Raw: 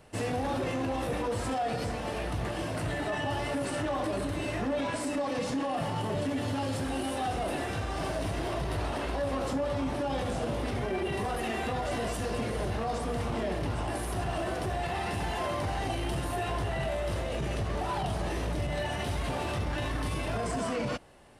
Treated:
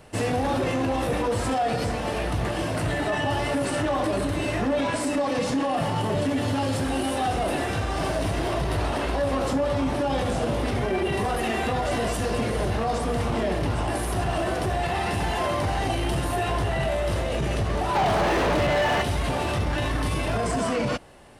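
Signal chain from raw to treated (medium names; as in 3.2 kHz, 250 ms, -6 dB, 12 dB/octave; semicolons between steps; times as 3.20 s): 17.95–19.02 s: overdrive pedal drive 29 dB, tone 1.4 kHz, clips at -20.5 dBFS; trim +6.5 dB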